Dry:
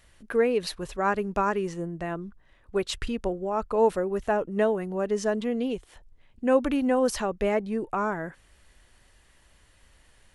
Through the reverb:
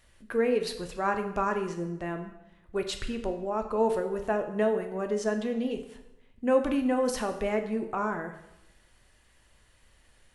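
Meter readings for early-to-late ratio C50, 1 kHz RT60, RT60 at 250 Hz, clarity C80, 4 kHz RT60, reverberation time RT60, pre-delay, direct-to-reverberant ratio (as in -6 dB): 9.5 dB, 0.90 s, 0.95 s, 11.5 dB, 0.80 s, 0.95 s, 7 ms, 5.5 dB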